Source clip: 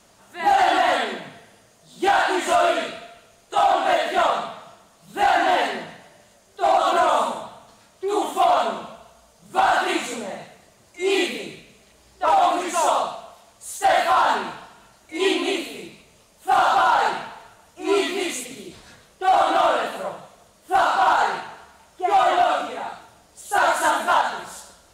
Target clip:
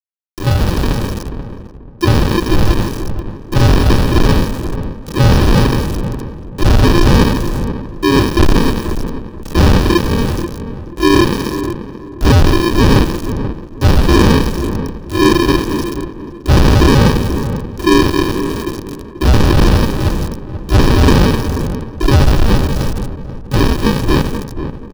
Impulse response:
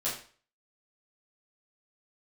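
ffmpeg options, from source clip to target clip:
-filter_complex "[0:a]aeval=exprs='val(0)+0.5*0.0133*sgn(val(0))':c=same,bandreject=f=50:t=h:w=6,bandreject=f=100:t=h:w=6,afftfilt=real='re*gte(hypot(re,im),0.0158)':imag='im*gte(hypot(re,im),0.0158)':win_size=1024:overlap=0.75,dynaudnorm=f=720:g=7:m=9.5dB,aresample=11025,acrusher=samples=16:mix=1:aa=0.000001,aresample=44100,volume=9.5dB,asoftclip=hard,volume=-9.5dB,acrusher=bits=4:mix=0:aa=0.000001,bandreject=f=2.1k:w=7,asplit=2[a][b];[b]adelay=485,lowpass=f=980:p=1,volume=-9dB,asplit=2[c][d];[d]adelay=485,lowpass=f=980:p=1,volume=0.29,asplit=2[e][f];[f]adelay=485,lowpass=f=980:p=1,volume=0.29[g];[a][c][e][g]amix=inputs=4:normalize=0,volume=4.5dB"

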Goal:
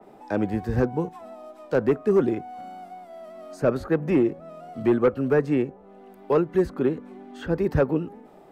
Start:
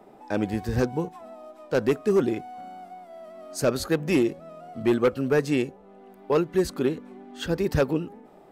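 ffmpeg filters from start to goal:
-filter_complex "[0:a]acrossover=split=110|460|2100[a][b][c][d];[d]acompressor=threshold=-54dB:ratio=6[e];[a][b][c][e]amix=inputs=4:normalize=0,adynamicequalizer=threshold=0.00562:dfrequency=2900:dqfactor=0.7:tfrequency=2900:tqfactor=0.7:attack=5:release=100:ratio=0.375:range=1.5:mode=cutabove:tftype=highshelf,volume=1.5dB"

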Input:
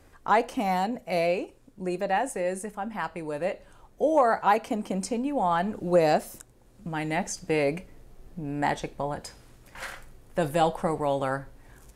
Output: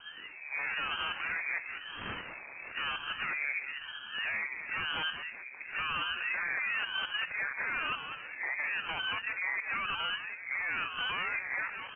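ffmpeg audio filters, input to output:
-filter_complex "[0:a]areverse,highpass=47,equalizer=f=1.4k:w=0.69:g=-7,acompressor=threshold=-32dB:ratio=6,alimiter=level_in=6.5dB:limit=-24dB:level=0:latency=1:release=62,volume=-6.5dB,aeval=exprs='0.0316*sin(PI/2*1.78*val(0)/0.0316)':c=same,lowpass=f=2.1k:t=q:w=0.5098,lowpass=f=2.1k:t=q:w=0.6013,lowpass=f=2.1k:t=q:w=0.9,lowpass=f=2.1k:t=q:w=2.563,afreqshift=-2500,asoftclip=type=tanh:threshold=-12.5dB,asplit=2[a][b];[b]aecho=0:1:197|394|591|788|985|1182|1379:0.376|0.214|0.122|0.0696|0.0397|0.0226|0.0129[c];[a][c]amix=inputs=2:normalize=0,aeval=exprs='val(0)*sin(2*PI*420*n/s+420*0.85/1*sin(2*PI*1*n/s))':c=same,volume=1.5dB"

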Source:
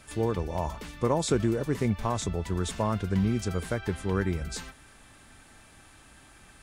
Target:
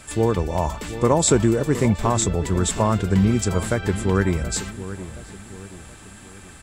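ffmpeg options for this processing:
-filter_complex "[0:a]equalizer=f=7.6k:w=7.9:g=12,asplit=2[a][b];[b]adelay=725,lowpass=f=1.4k:p=1,volume=-13dB,asplit=2[c][d];[d]adelay=725,lowpass=f=1.4k:p=1,volume=0.47,asplit=2[e][f];[f]adelay=725,lowpass=f=1.4k:p=1,volume=0.47,asplit=2[g][h];[h]adelay=725,lowpass=f=1.4k:p=1,volume=0.47,asplit=2[i][j];[j]adelay=725,lowpass=f=1.4k:p=1,volume=0.47[k];[a][c][e][g][i][k]amix=inputs=6:normalize=0,volume=8dB"

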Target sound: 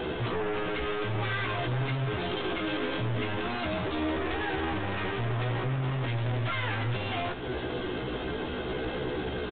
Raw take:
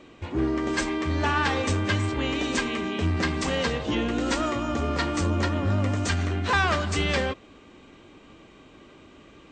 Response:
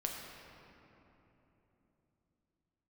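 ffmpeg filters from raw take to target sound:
-filter_complex "[0:a]lowshelf=f=310:g=4,bandreject=f=430:w=13,acompressor=threshold=-33dB:ratio=12,alimiter=level_in=8.5dB:limit=-24dB:level=0:latency=1:release=14,volume=-8.5dB,aeval=exprs='0.0251*(cos(1*acos(clip(val(0)/0.0251,-1,1)))-cos(1*PI/2))+0.00224*(cos(2*acos(clip(val(0)/0.0251,-1,1)))-cos(2*PI/2))+0.00316*(cos(3*acos(clip(val(0)/0.0251,-1,1)))-cos(3*PI/2))+0.0112*(cos(5*acos(clip(val(0)/0.0251,-1,1)))-cos(5*PI/2))+0.001*(cos(6*acos(clip(val(0)/0.0251,-1,1)))-cos(6*PI/2))':c=same,asoftclip=type=tanh:threshold=-33.5dB,asetrate=58866,aresample=44100,atempo=0.749154,asplit=2[a][b];[b]adelay=16,volume=-5dB[c];[a][c]amix=inputs=2:normalize=0,asplit=2[d][e];[1:a]atrim=start_sample=2205,asetrate=70560,aresample=44100,adelay=71[f];[e][f]afir=irnorm=-1:irlink=0,volume=-12dB[g];[d][g]amix=inputs=2:normalize=0,aresample=8000,aresample=44100,volume=8dB"

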